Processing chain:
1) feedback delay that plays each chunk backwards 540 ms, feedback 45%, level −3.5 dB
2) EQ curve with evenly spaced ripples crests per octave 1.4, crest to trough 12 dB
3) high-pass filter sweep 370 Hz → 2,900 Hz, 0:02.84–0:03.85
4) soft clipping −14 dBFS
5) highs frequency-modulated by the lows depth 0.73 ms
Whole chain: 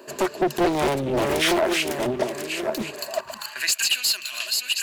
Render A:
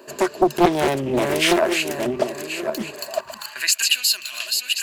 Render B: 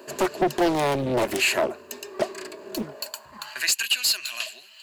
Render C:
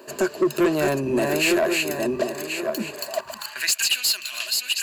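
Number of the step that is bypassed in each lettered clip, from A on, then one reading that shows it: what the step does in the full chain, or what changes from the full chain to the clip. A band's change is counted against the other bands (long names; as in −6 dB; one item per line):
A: 4, distortion level −12 dB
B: 1, change in crest factor +2.0 dB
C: 5, 1 kHz band −5.0 dB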